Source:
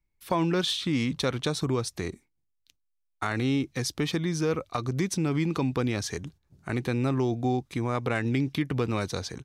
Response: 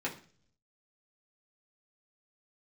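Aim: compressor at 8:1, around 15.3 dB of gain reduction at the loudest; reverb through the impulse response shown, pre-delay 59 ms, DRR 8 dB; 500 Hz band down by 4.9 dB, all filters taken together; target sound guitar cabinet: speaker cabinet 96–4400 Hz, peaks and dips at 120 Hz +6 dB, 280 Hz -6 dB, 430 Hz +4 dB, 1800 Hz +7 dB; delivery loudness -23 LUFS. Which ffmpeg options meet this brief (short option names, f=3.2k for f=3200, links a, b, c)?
-filter_complex "[0:a]equalizer=f=500:t=o:g=-8.5,acompressor=threshold=-41dB:ratio=8,asplit=2[a][b];[1:a]atrim=start_sample=2205,adelay=59[c];[b][c]afir=irnorm=-1:irlink=0,volume=-12.5dB[d];[a][d]amix=inputs=2:normalize=0,highpass=96,equalizer=f=120:t=q:w=4:g=6,equalizer=f=280:t=q:w=4:g=-6,equalizer=f=430:t=q:w=4:g=4,equalizer=f=1.8k:t=q:w=4:g=7,lowpass=f=4.4k:w=0.5412,lowpass=f=4.4k:w=1.3066,volume=20dB"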